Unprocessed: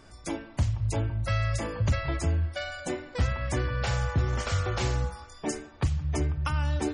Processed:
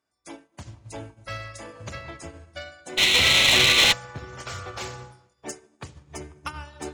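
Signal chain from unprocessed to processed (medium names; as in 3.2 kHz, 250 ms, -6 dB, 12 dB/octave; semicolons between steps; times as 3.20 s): hum notches 60/120/180/240/300/360/420/480/540/600 Hz; on a send at -8.5 dB: tilt shelf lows +6 dB + reverberation RT60 2.2 s, pre-delay 33 ms; on the sum: painted sound noise, 2.97–3.93 s, 1.9–4.3 kHz -24 dBFS; high-pass 350 Hz 6 dB/octave; one-sided clip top -27 dBFS; treble shelf 9 kHz +4.5 dB; upward expansion 2.5:1, over -47 dBFS; trim +9 dB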